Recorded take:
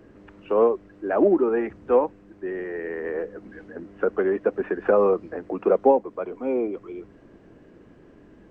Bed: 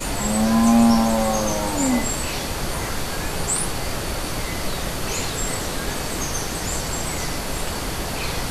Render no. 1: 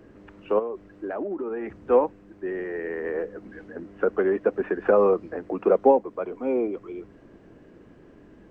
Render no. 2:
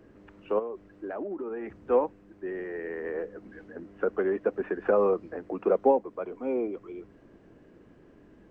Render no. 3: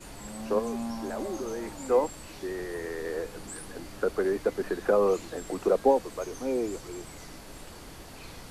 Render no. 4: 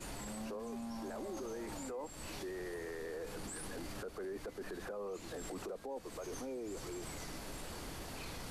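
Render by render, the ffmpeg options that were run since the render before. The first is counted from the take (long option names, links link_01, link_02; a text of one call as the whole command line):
ffmpeg -i in.wav -filter_complex "[0:a]asplit=3[link_01][link_02][link_03];[link_01]afade=type=out:start_time=0.58:duration=0.02[link_04];[link_02]acompressor=threshold=-27dB:ratio=8:attack=3.2:release=140:knee=1:detection=peak,afade=type=in:start_time=0.58:duration=0.02,afade=type=out:start_time=1.77:duration=0.02[link_05];[link_03]afade=type=in:start_time=1.77:duration=0.02[link_06];[link_04][link_05][link_06]amix=inputs=3:normalize=0" out.wav
ffmpeg -i in.wav -af "volume=-4.5dB" out.wav
ffmpeg -i in.wav -i bed.wav -filter_complex "[1:a]volume=-19.5dB[link_01];[0:a][link_01]amix=inputs=2:normalize=0" out.wav
ffmpeg -i in.wav -af "acompressor=threshold=-33dB:ratio=16,alimiter=level_in=12dB:limit=-24dB:level=0:latency=1:release=11,volume=-12dB" out.wav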